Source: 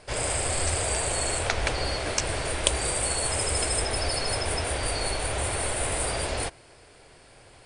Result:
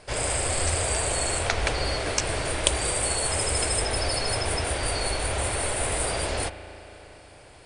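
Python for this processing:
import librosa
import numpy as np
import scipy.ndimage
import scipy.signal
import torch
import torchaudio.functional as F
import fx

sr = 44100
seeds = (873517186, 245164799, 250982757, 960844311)

y = fx.rev_spring(x, sr, rt60_s=3.8, pass_ms=(36,), chirp_ms=35, drr_db=11.5)
y = F.gain(torch.from_numpy(y), 1.0).numpy()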